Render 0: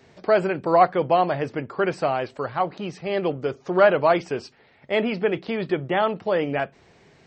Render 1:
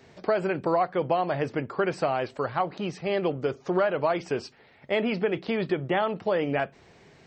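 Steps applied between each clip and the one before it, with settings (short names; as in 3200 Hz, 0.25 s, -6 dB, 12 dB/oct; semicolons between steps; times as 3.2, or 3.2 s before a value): compressor 6:1, threshold -21 dBFS, peak gain reduction 10.5 dB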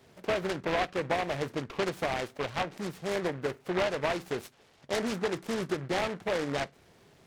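noise-modulated delay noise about 1200 Hz, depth 0.13 ms; gain -5 dB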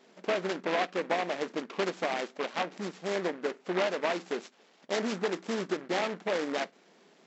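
brick-wall FIR band-pass 170–7800 Hz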